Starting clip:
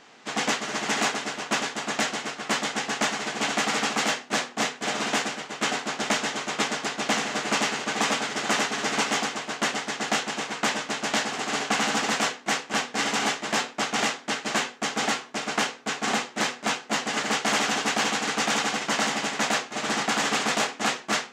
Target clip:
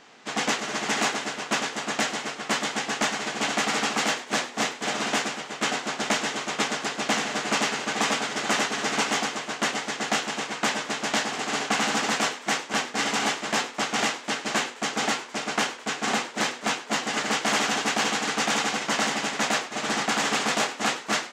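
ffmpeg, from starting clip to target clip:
ffmpeg -i in.wav -filter_complex "[0:a]asplit=6[link_01][link_02][link_03][link_04][link_05][link_06];[link_02]adelay=103,afreqshift=110,volume=-17dB[link_07];[link_03]adelay=206,afreqshift=220,volume=-22.4dB[link_08];[link_04]adelay=309,afreqshift=330,volume=-27.7dB[link_09];[link_05]adelay=412,afreqshift=440,volume=-33.1dB[link_10];[link_06]adelay=515,afreqshift=550,volume=-38.4dB[link_11];[link_01][link_07][link_08][link_09][link_10][link_11]amix=inputs=6:normalize=0" out.wav

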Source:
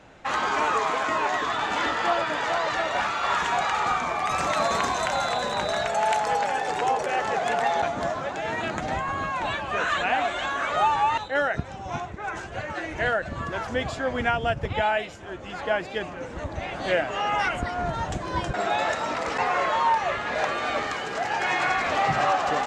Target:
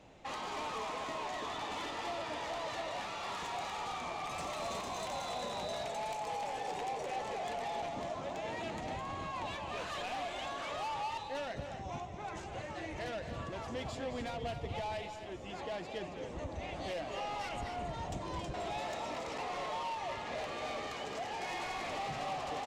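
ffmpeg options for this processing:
ffmpeg -i in.wav -af "asoftclip=type=tanh:threshold=-25dB,equalizer=frequency=1500:width_type=o:width=0.56:gain=-11,alimiter=level_in=2.5dB:limit=-24dB:level=0:latency=1:release=434,volume=-2.5dB,aecho=1:1:215.7|271.1:0.282|0.316,volume=-6.5dB" out.wav

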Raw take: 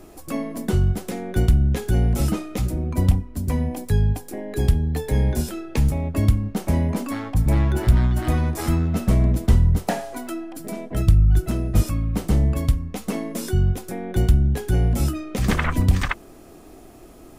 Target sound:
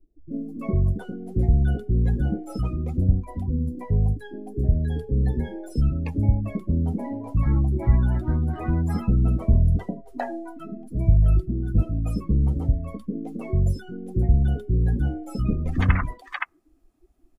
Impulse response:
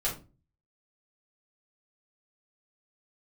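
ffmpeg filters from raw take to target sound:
-filter_complex "[0:a]acrossover=split=480[link_01][link_02];[link_02]adelay=310[link_03];[link_01][link_03]amix=inputs=2:normalize=0,afftdn=noise_reduction=25:noise_floor=-29,volume=-2dB"

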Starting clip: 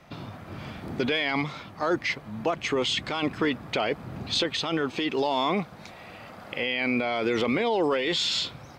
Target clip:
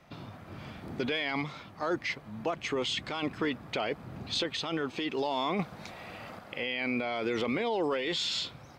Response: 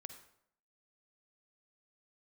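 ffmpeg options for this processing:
-filter_complex "[0:a]asettb=1/sr,asplit=3[link_01][link_02][link_03];[link_01]atrim=end=5.594[link_04];[link_02]atrim=start=5.59:end=6.39,asetpts=PTS-STARTPTS,afade=type=in:duration=0.004:curve=qsin,afade=type=out:start_time=0.796:duration=0.004:curve=qsin,acontrast=33[link_05];[link_03]atrim=start=6.386[link_06];[link_04][link_05]acrossfade=duration=0.004:curve1=hsin:curve2=qsin[link_07];[link_07][link_06]acrossfade=duration=0.004:curve1=qsin:curve2=hsin,volume=-5.5dB"

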